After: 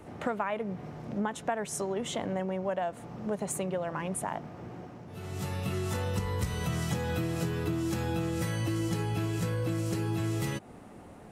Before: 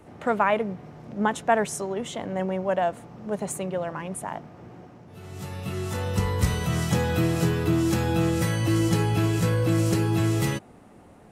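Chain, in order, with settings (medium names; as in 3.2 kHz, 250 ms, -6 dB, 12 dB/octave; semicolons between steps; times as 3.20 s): compression 6:1, threshold -30 dBFS, peak gain reduction 14.5 dB; trim +1.5 dB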